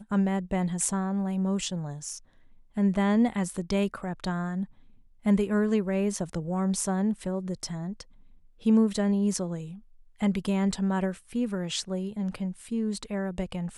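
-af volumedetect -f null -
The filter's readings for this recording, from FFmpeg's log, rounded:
mean_volume: -28.3 dB
max_volume: -10.9 dB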